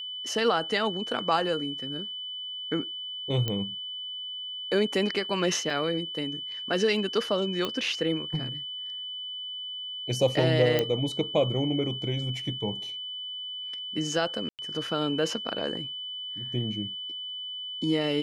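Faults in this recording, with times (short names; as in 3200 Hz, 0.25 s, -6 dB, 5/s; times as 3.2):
tone 3000 Hz -34 dBFS
3.48 pop -15 dBFS
5.7 gap 2.9 ms
7.65 pop -15 dBFS
10.79 pop -11 dBFS
14.49–14.59 gap 98 ms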